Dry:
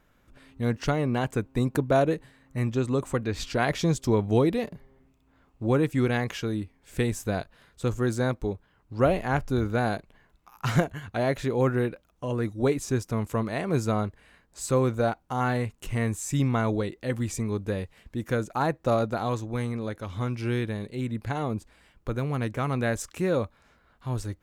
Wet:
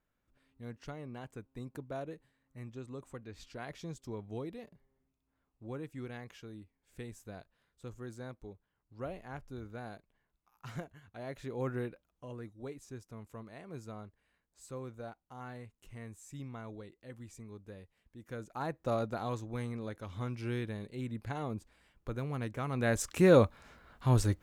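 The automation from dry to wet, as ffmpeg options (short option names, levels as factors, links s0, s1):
-af "volume=4.47,afade=t=in:st=11.18:d=0.59:silence=0.398107,afade=t=out:st=11.77:d=0.81:silence=0.354813,afade=t=in:st=18.19:d=0.77:silence=0.266073,afade=t=in:st=22.72:d=0.63:silence=0.237137"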